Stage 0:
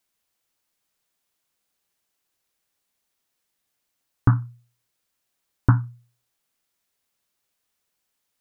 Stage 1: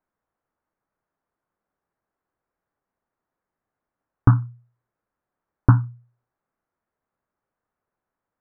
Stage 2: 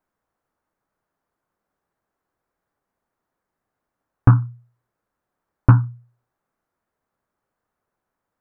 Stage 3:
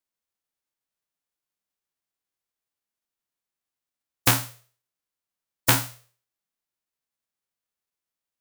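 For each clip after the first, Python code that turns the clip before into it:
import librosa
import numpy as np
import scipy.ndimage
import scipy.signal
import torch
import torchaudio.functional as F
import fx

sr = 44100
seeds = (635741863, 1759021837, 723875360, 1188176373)

y1 = scipy.signal.sosfilt(scipy.signal.butter(4, 1500.0, 'lowpass', fs=sr, output='sos'), x)
y1 = F.gain(torch.from_numpy(y1), 3.0).numpy()
y2 = 10.0 ** (-4.0 / 20.0) * np.tanh(y1 / 10.0 ** (-4.0 / 20.0))
y2 = F.gain(torch.from_numpy(y2), 4.0).numpy()
y3 = fx.envelope_flatten(y2, sr, power=0.1)
y3 = F.gain(torch.from_numpy(y3), -8.5).numpy()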